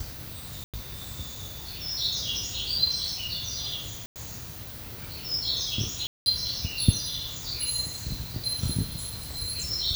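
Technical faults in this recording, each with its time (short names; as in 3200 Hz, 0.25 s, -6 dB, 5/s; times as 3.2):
0.64–0.74 gap 97 ms
4.06–4.16 gap 98 ms
6.07–6.26 gap 0.191 s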